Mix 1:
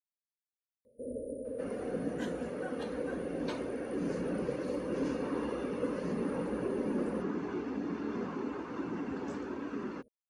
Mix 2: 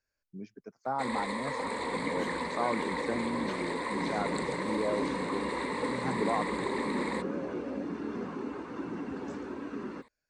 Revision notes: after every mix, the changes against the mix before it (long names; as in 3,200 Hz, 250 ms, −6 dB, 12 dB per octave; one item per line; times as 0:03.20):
speech: unmuted
first sound: remove linear-phase brick-wall band-stop 650–9,100 Hz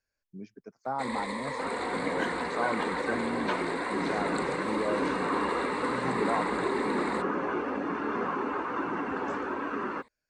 second sound: add drawn EQ curve 220 Hz 0 dB, 1,200 Hz +15 dB, 2,900 Hz +8 dB, 4,800 Hz +1 dB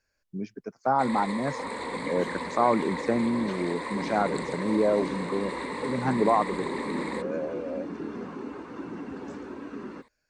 speech +9.0 dB
second sound: add drawn EQ curve 220 Hz 0 dB, 1,200 Hz −15 dB, 2,900 Hz −8 dB, 4,800 Hz −1 dB